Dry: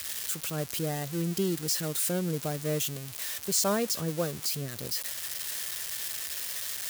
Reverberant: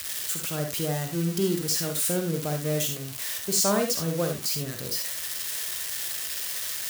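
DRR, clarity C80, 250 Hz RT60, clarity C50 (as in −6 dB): 4.0 dB, 11.5 dB, can't be measured, 5.5 dB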